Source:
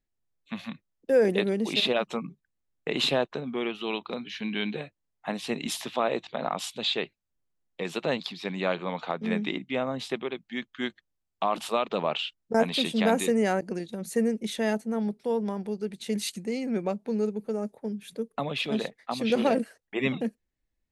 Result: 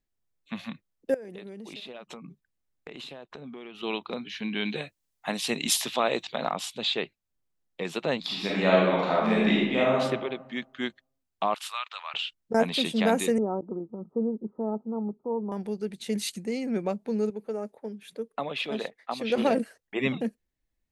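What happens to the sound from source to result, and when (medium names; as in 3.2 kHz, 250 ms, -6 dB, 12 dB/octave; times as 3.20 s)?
1.14–3.83 s: compression 12:1, threshold -38 dBFS
4.65–6.51 s: treble shelf 2.7 kHz +11 dB
8.20–10.00 s: reverb throw, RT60 1.1 s, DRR -6 dB
11.54–12.14 s: high-pass 1.2 kHz 24 dB/octave
13.38–15.52 s: rippled Chebyshev low-pass 1.3 kHz, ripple 6 dB
17.30–19.38 s: tone controls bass -10 dB, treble -5 dB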